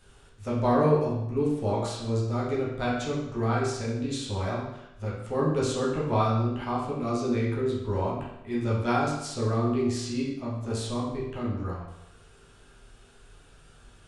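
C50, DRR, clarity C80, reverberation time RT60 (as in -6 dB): 2.0 dB, -7.0 dB, 5.0 dB, 0.85 s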